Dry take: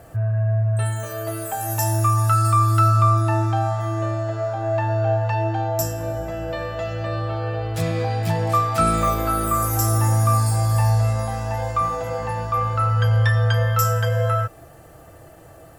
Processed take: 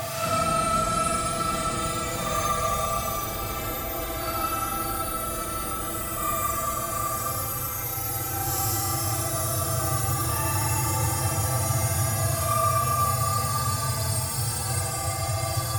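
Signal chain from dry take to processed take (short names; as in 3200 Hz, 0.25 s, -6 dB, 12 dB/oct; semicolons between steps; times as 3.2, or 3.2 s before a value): spectral whitening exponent 0.6; Paulstretch 8.2×, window 0.05 s, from 8.75; gain -7.5 dB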